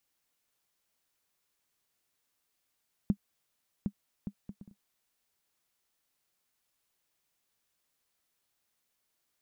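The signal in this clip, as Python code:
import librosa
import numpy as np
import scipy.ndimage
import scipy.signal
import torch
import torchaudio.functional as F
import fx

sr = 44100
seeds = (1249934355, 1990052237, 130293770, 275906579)

y = fx.bouncing_ball(sr, first_gap_s=0.76, ratio=0.54, hz=201.0, decay_ms=70.0, level_db=-16.0)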